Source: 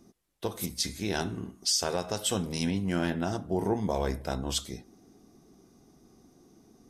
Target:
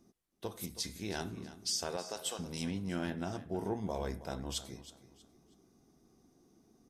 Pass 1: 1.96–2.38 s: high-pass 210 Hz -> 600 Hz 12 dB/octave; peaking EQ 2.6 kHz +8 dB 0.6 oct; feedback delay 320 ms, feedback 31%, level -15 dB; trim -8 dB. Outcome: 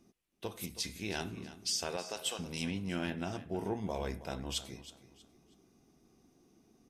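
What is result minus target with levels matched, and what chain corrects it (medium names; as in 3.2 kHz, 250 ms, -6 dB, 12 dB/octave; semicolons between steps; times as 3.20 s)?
2 kHz band +3.0 dB
1.96–2.38 s: high-pass 210 Hz -> 600 Hz 12 dB/octave; feedback delay 320 ms, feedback 31%, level -15 dB; trim -8 dB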